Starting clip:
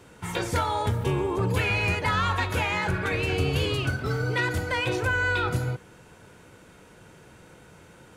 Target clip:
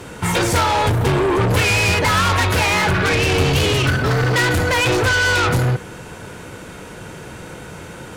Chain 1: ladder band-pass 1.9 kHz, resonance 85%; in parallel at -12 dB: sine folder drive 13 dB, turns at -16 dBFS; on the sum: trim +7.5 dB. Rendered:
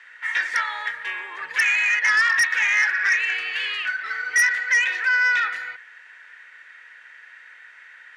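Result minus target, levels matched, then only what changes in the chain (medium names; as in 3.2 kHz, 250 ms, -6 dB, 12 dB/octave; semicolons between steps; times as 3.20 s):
2 kHz band +4.5 dB
remove: ladder band-pass 1.9 kHz, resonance 85%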